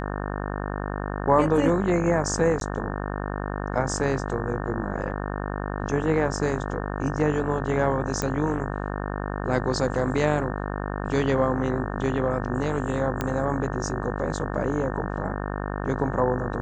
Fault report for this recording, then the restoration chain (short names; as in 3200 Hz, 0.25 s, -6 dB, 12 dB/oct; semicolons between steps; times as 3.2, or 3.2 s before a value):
buzz 50 Hz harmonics 36 -30 dBFS
2.6–2.61 gap 12 ms
8.22 pop -12 dBFS
13.21 pop -12 dBFS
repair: de-click; de-hum 50 Hz, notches 36; interpolate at 2.6, 12 ms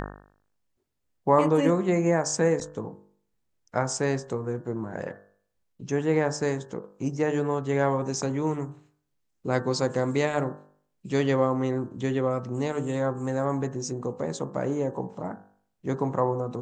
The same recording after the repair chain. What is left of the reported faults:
none